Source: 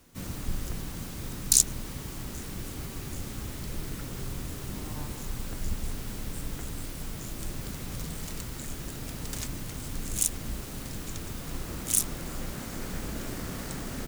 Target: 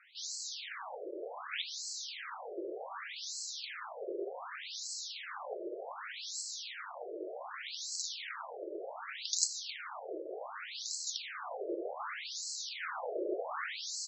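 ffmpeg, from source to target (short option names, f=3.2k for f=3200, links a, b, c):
-af "equalizer=f=2.8k:w=3.7:g=-3,afftfilt=real='re*between(b*sr/1024,450*pow(5800/450,0.5+0.5*sin(2*PI*0.66*pts/sr))/1.41,450*pow(5800/450,0.5+0.5*sin(2*PI*0.66*pts/sr))*1.41)':imag='im*between(b*sr/1024,450*pow(5800/450,0.5+0.5*sin(2*PI*0.66*pts/sr))/1.41,450*pow(5800/450,0.5+0.5*sin(2*PI*0.66*pts/sr))*1.41)':win_size=1024:overlap=0.75,volume=10dB"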